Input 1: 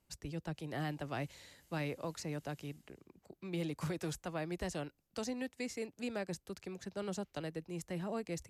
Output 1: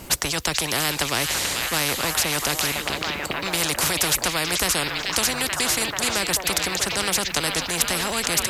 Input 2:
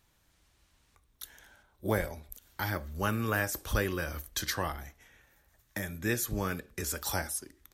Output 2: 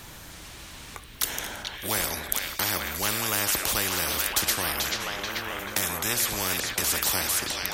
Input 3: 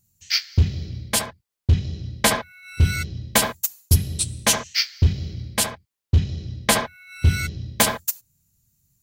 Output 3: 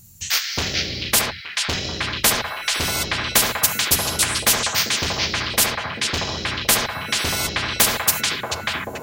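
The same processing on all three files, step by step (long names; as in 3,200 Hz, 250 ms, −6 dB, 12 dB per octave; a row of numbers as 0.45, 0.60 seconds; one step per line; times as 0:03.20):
echo through a band-pass that steps 436 ms, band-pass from 3,000 Hz, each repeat −0.7 octaves, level −3 dB
every bin compressed towards the loudest bin 4 to 1
normalise the peak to −1.5 dBFS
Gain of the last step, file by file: +25.5, +13.0, +4.0 decibels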